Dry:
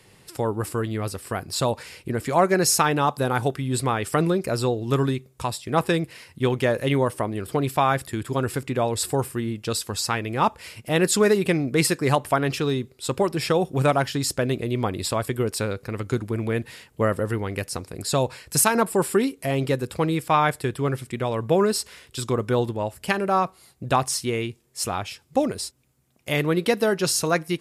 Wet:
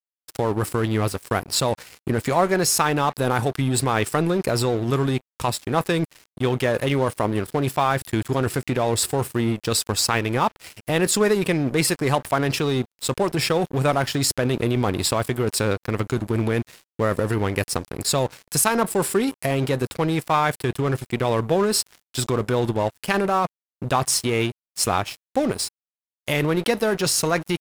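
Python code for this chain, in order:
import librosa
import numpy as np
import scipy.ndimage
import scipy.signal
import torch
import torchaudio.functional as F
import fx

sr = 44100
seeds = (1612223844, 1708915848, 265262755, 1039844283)

p1 = fx.over_compress(x, sr, threshold_db=-26.0, ratio=-0.5)
p2 = x + (p1 * librosa.db_to_amplitude(-1.5))
y = np.sign(p2) * np.maximum(np.abs(p2) - 10.0 ** (-32.0 / 20.0), 0.0)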